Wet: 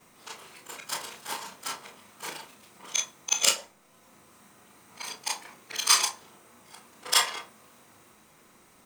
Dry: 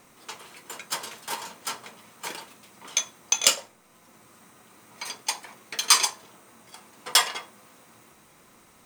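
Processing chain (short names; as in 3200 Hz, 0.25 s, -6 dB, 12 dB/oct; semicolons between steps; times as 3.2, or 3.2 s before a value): short-time reversal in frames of 76 ms; gain +1 dB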